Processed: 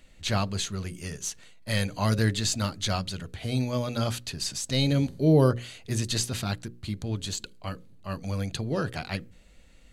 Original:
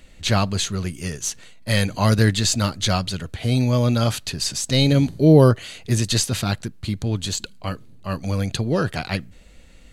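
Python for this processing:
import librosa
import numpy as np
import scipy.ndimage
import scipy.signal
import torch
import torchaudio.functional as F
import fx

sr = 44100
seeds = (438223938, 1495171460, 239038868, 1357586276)

y = fx.hum_notches(x, sr, base_hz=60, count=9)
y = F.gain(torch.from_numpy(y), -7.0).numpy()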